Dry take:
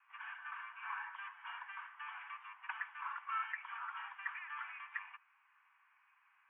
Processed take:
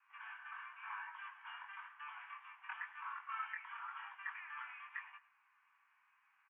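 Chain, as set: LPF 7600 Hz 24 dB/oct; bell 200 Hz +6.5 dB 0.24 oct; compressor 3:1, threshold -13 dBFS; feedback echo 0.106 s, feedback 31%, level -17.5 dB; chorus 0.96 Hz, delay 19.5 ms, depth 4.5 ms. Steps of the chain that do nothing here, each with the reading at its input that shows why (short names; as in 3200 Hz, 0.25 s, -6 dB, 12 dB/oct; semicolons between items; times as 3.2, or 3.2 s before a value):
LPF 7600 Hz: input band ends at 3200 Hz; bell 200 Hz: input band starts at 720 Hz; compressor, threshold -13 dBFS: input peak -27.0 dBFS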